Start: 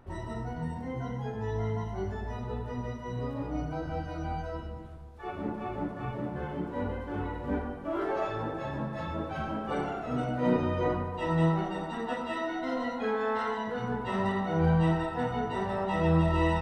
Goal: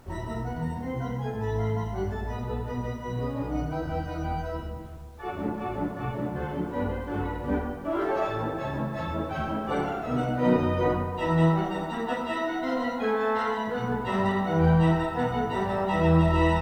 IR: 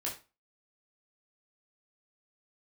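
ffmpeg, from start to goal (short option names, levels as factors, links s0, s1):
-af "acrusher=bits=10:mix=0:aa=0.000001,volume=1.58"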